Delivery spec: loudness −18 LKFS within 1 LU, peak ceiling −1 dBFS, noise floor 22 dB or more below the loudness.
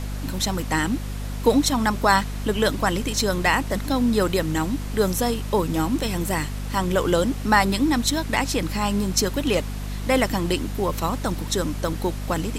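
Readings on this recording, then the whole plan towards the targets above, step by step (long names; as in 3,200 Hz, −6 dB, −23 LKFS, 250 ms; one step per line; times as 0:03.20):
mains hum 50 Hz; hum harmonics up to 250 Hz; level of the hum −27 dBFS; background noise floor −30 dBFS; target noise floor −45 dBFS; integrated loudness −23.0 LKFS; sample peak −3.0 dBFS; target loudness −18.0 LKFS
→ hum removal 50 Hz, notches 5
noise reduction from a noise print 15 dB
level +5 dB
brickwall limiter −1 dBFS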